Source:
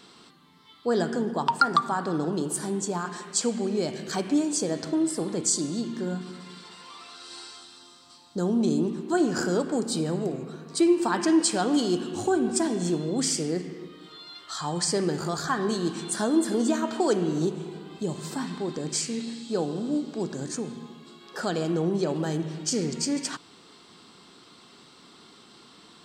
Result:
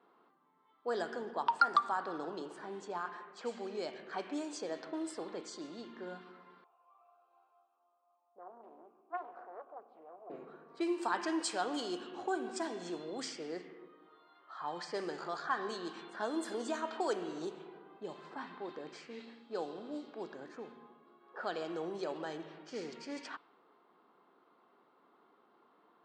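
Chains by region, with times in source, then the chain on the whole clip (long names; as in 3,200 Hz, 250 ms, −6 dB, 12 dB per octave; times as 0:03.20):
0:06.64–0:10.30: formant filter a + highs frequency-modulated by the lows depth 0.37 ms
whole clip: low-pass filter 2,600 Hz 6 dB per octave; low-pass that shuts in the quiet parts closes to 910 Hz, open at −20 dBFS; Bessel high-pass filter 670 Hz, order 2; level −4.5 dB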